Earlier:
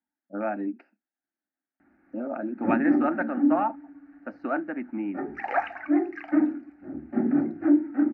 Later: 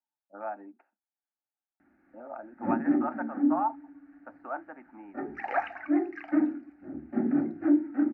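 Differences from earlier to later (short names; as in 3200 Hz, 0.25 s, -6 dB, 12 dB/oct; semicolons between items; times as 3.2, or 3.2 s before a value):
speech: add band-pass 940 Hz, Q 2.7; background -3.0 dB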